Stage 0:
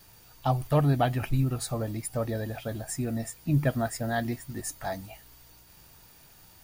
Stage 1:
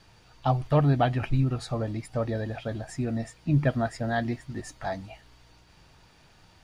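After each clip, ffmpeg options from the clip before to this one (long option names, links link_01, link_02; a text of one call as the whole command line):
ffmpeg -i in.wav -af "lowpass=4500,volume=1.5dB" out.wav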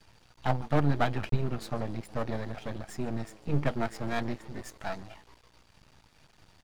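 ffmpeg -i in.wav -filter_complex "[0:a]asplit=6[link_01][link_02][link_03][link_04][link_05][link_06];[link_02]adelay=143,afreqshift=99,volume=-21dB[link_07];[link_03]adelay=286,afreqshift=198,volume=-25.6dB[link_08];[link_04]adelay=429,afreqshift=297,volume=-30.2dB[link_09];[link_05]adelay=572,afreqshift=396,volume=-34.7dB[link_10];[link_06]adelay=715,afreqshift=495,volume=-39.3dB[link_11];[link_01][link_07][link_08][link_09][link_10][link_11]amix=inputs=6:normalize=0,aeval=exprs='max(val(0),0)':channel_layout=same" out.wav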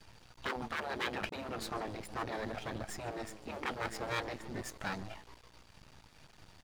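ffmpeg -i in.wav -af "afftfilt=real='re*lt(hypot(re,im),0.0891)':imag='im*lt(hypot(re,im),0.0891)':win_size=1024:overlap=0.75,volume=1.5dB" out.wav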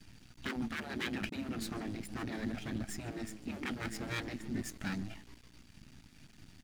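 ffmpeg -i in.wav -af "equalizer=frequency=250:width_type=o:width=1:gain=9,equalizer=frequency=500:width_type=o:width=1:gain=-10,equalizer=frequency=1000:width_type=o:width=1:gain=-10,equalizer=frequency=4000:width_type=o:width=1:gain=-3,volume=2dB" out.wav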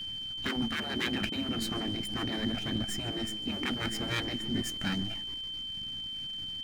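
ffmpeg -i in.wav -af "aeval=exprs='val(0)+0.00891*sin(2*PI*3100*n/s)':channel_layout=same,volume=5dB" out.wav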